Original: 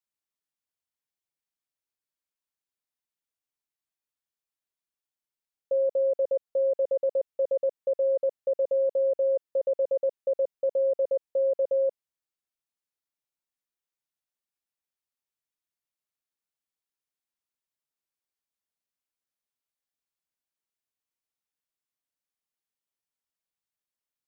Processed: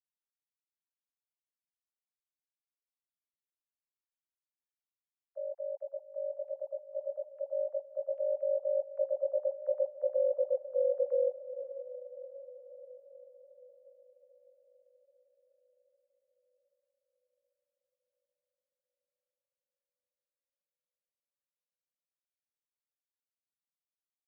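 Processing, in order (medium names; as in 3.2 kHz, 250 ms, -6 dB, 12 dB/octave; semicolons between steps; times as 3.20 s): formants replaced by sine waves; Doppler pass-by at 10.39 s, 21 m/s, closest 24 m; peak limiter -20.5 dBFS, peak gain reduction 4 dB; high-pass 420 Hz 12 dB/octave; echo that smears into a reverb 638 ms, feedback 53%, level -13 dB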